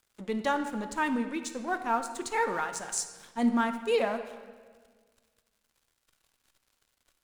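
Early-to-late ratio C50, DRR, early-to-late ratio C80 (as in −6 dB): 9.5 dB, 7.0 dB, 11.0 dB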